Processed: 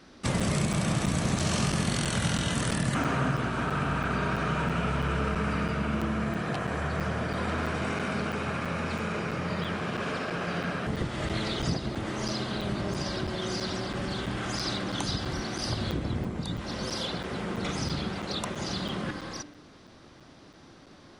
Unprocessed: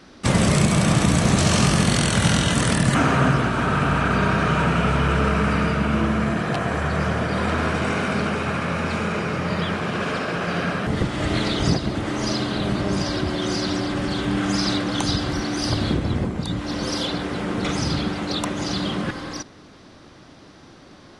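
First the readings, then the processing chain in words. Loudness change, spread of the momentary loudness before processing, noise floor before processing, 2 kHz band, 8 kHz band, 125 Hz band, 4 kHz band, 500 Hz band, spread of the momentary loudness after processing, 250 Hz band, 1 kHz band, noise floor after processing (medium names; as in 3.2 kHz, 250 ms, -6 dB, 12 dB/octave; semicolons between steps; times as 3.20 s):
-8.5 dB, 7 LU, -46 dBFS, -8.0 dB, -8.5 dB, -8.5 dB, -7.5 dB, -8.0 dB, 5 LU, -9.0 dB, -8.0 dB, -52 dBFS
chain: de-hum 98.24 Hz, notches 34; compression 1.5:1, threshold -24 dBFS, peak gain reduction 4.5 dB; crackling interface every 0.33 s, samples 256, zero, from 0.40 s; trim -5.5 dB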